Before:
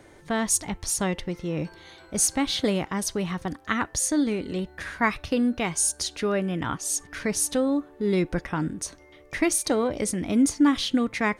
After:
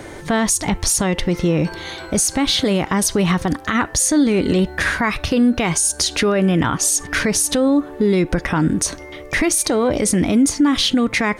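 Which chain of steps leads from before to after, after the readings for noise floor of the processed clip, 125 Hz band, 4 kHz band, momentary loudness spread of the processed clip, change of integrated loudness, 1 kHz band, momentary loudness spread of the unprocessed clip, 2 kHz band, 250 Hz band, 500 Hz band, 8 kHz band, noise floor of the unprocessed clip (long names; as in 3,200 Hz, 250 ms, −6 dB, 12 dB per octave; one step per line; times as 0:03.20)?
−36 dBFS, +11.0 dB, +10.5 dB, 5 LU, +8.0 dB, +7.0 dB, 9 LU, +9.0 dB, +8.0 dB, +8.0 dB, +8.0 dB, −52 dBFS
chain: downward compressor, threshold −26 dBFS, peak gain reduction 10.5 dB
boost into a limiter +24 dB
level −7 dB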